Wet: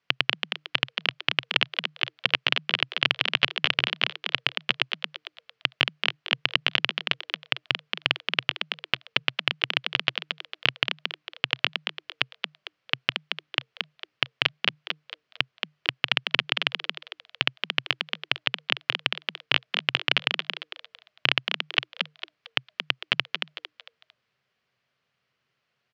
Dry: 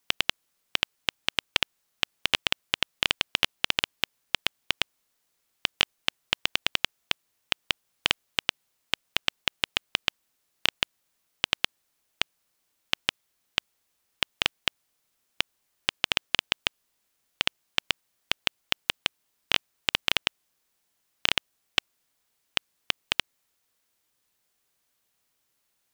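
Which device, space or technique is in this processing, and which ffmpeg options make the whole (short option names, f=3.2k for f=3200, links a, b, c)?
frequency-shifting delay pedal into a guitar cabinet: -filter_complex "[0:a]asplit=5[a][b][c][d][e];[b]adelay=226,afreqshift=150,volume=-5dB[f];[c]adelay=452,afreqshift=300,volume=-13.9dB[g];[d]adelay=678,afreqshift=450,volume=-22.7dB[h];[e]adelay=904,afreqshift=600,volume=-31.6dB[i];[a][f][g][h][i]amix=inputs=5:normalize=0,highpass=97,equalizer=f=130:t=q:w=4:g=10,equalizer=f=300:t=q:w=4:g=-10,equalizer=f=870:t=q:w=4:g=-7,equalizer=f=3.7k:t=q:w=4:g=-6,lowpass=f=4k:w=0.5412,lowpass=f=4k:w=1.3066,volume=4dB"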